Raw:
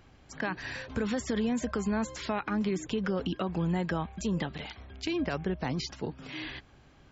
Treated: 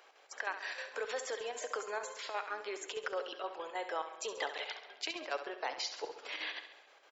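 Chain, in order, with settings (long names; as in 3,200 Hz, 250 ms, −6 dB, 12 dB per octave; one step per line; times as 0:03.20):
Butterworth high-pass 450 Hz 36 dB per octave
speech leveller within 5 dB 0.5 s
square-wave tremolo 6.4 Hz, depth 60%, duty 70%
repeating echo 68 ms, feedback 55%, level −10.5 dB
convolution reverb RT60 2.0 s, pre-delay 7 ms, DRR 16.5 dB
level −1 dB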